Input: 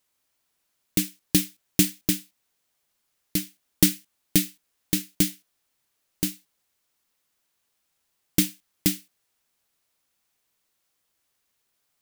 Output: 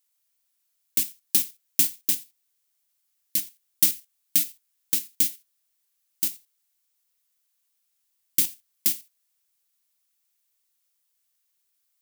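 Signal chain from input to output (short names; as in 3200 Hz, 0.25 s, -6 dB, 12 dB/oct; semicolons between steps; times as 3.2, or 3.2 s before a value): tilt +3.5 dB/oct; in parallel at 0 dB: level quantiser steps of 20 dB; on the sum: gain -12 dB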